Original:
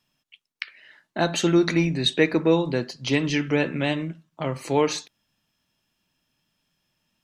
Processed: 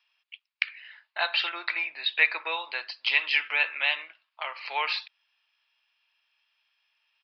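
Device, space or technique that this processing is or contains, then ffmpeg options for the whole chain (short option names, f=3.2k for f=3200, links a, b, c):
musical greeting card: -filter_complex "[0:a]asettb=1/sr,asplit=3[a][b][c];[a]atrim=end=1.494[d];[b]atrim=start=1.49:end=2.18,asetpts=PTS-STARTPTS,afade=t=in:d=0.004:c=qsin,afade=t=out:st=0.686:d=0.004:c=qsin,highshelf=f=2.6k:g=-10[e];[c]atrim=start=2.176[f];[d][e]acrossfade=d=0.004:c1=hsin:c2=qsin[g];[g][f]acrossfade=d=0.004:c1=qsin:c2=hsin,aresample=11025,aresample=44100,highpass=f=870:w=0.5412,highpass=f=870:w=1.3066,equalizer=f=2.5k:t=o:w=0.56:g=8"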